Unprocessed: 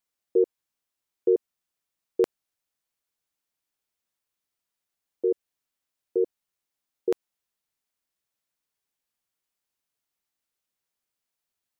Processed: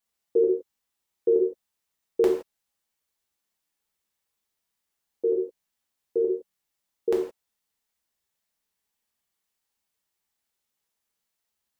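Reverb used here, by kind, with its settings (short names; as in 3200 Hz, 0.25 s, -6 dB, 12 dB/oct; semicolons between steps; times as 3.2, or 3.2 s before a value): non-linear reverb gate 0.19 s falling, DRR -2 dB; gain -1 dB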